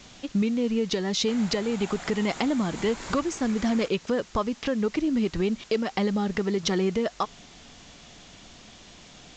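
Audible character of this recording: a quantiser's noise floor 8-bit, dither triangular; µ-law

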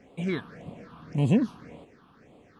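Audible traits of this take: phasing stages 6, 1.8 Hz, lowest notch 520–1600 Hz

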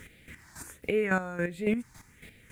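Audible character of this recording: phasing stages 4, 1.4 Hz, lowest notch 480–1000 Hz; a quantiser's noise floor 12-bit, dither none; chopped level 3.6 Hz, depth 65%, duty 25%

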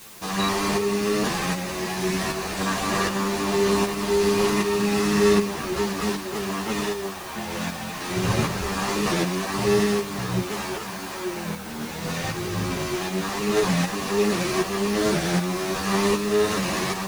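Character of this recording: tremolo saw up 1.3 Hz, depth 50%; a quantiser's noise floor 8-bit, dither triangular; a shimmering, thickened sound

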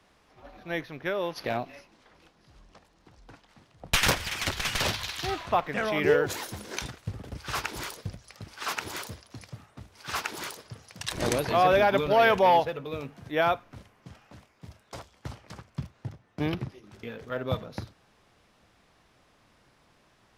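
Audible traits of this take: noise floor -64 dBFS; spectral tilt -4.0 dB/oct

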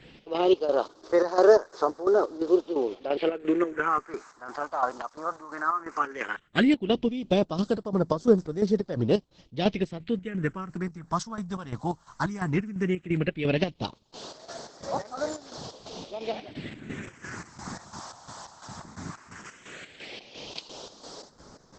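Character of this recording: chopped level 2.9 Hz, depth 65%, duty 55%; phasing stages 4, 0.15 Hz, lowest notch 410–2600 Hz; Opus

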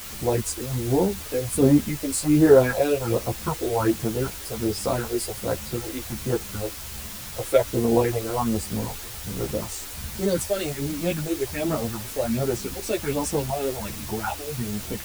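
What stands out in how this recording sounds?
phasing stages 4, 1.3 Hz, lowest notch 150–3200 Hz; a quantiser's noise floor 6-bit, dither triangular; a shimmering, thickened sound

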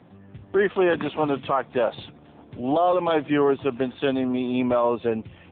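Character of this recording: AMR-NB

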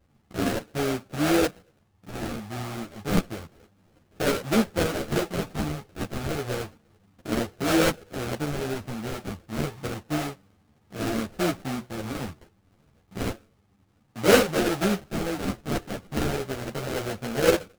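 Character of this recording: a buzz of ramps at a fixed pitch in blocks of 8 samples; phasing stages 4, 0.3 Hz, lowest notch 530–1300 Hz; aliases and images of a low sample rate 1000 Hz, jitter 20%; a shimmering, thickened sound

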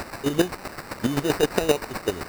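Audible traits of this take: a quantiser's noise floor 6-bit, dither triangular; chopped level 7.7 Hz, depth 65%, duty 20%; aliases and images of a low sample rate 3300 Hz, jitter 0%

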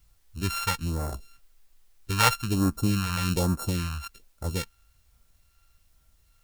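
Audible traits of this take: a buzz of ramps at a fixed pitch in blocks of 32 samples; phasing stages 2, 1.2 Hz, lowest notch 310–2900 Hz; a quantiser's noise floor 12-bit, dither triangular

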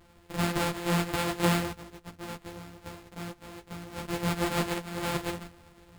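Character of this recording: a buzz of ramps at a fixed pitch in blocks of 256 samples; random-step tremolo; aliases and images of a low sample rate 5900 Hz, jitter 0%; a shimmering, thickened sound

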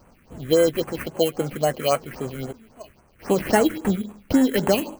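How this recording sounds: aliases and images of a low sample rate 3600 Hz, jitter 0%; phasing stages 4, 3.7 Hz, lowest notch 760–5000 Hz

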